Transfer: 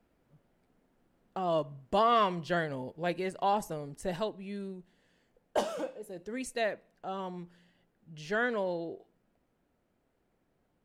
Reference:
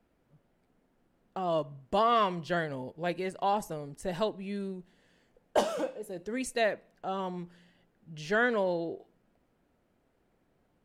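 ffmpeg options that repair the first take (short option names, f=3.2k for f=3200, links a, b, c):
-af "asetnsamples=n=441:p=0,asendcmd='4.16 volume volume 3.5dB',volume=0dB"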